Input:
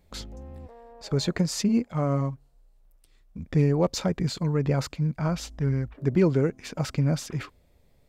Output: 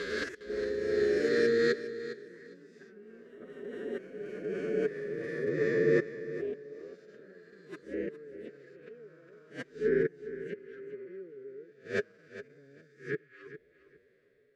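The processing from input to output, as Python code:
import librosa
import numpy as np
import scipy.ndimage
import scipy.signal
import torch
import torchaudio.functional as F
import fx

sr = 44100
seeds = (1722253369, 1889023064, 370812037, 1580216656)

p1 = fx.spec_swells(x, sr, rise_s=2.06)
p2 = fx.leveller(p1, sr, passes=1)
p3 = fx.gate_flip(p2, sr, shuts_db=-14.0, range_db=-33)
p4 = fx.rotary_switch(p3, sr, hz=5.0, then_hz=1.1, switch_at_s=3.4)
p5 = fx.stretch_vocoder(p4, sr, factor=1.8)
p6 = fx.rider(p5, sr, range_db=3, speed_s=2.0)
p7 = p5 + (p6 * 10.0 ** (2.0 / 20.0))
p8 = fx.echo_pitch(p7, sr, ms=99, semitones=4, count=2, db_per_echo=-6.0)
p9 = fx.double_bandpass(p8, sr, hz=840.0, octaves=2.0)
p10 = p9 + fx.echo_feedback(p9, sr, ms=408, feedback_pct=18, wet_db=-13.5, dry=0)
y = p10 * 10.0 ** (7.0 / 20.0)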